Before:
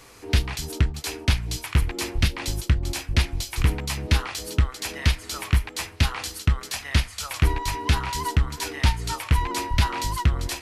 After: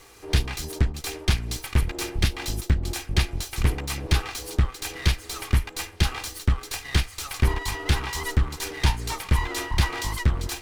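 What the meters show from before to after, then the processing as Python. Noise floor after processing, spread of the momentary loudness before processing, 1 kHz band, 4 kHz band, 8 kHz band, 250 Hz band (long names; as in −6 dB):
−46 dBFS, 4 LU, −3.5 dB, −1.0 dB, −0.5 dB, −1.0 dB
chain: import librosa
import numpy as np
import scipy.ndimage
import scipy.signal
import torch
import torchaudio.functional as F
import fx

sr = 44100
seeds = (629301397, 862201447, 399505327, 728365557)

y = fx.lower_of_two(x, sr, delay_ms=2.5)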